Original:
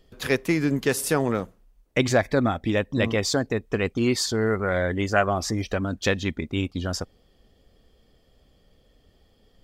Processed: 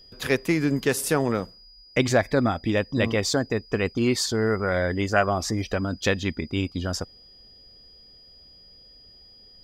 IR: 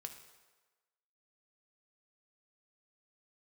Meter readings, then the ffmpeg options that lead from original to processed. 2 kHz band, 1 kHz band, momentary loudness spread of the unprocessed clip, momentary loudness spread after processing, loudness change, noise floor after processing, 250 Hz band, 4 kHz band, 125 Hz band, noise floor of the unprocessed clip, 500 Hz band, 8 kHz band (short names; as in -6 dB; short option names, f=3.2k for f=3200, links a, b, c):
0.0 dB, 0.0 dB, 6 LU, 6 LU, 0.0 dB, -52 dBFS, 0.0 dB, +0.5 dB, 0.0 dB, -62 dBFS, 0.0 dB, 0.0 dB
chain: -af "aeval=exprs='val(0)+0.00355*sin(2*PI*4900*n/s)':c=same"